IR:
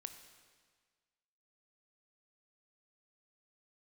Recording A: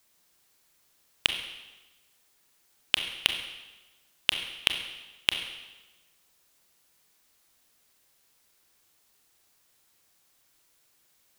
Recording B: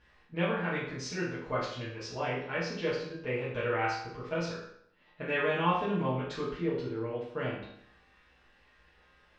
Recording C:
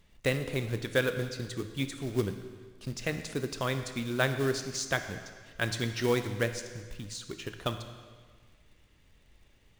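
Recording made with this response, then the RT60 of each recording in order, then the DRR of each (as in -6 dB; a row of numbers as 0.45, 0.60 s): C; 1.1, 0.70, 1.6 s; 5.0, -10.0, 8.0 dB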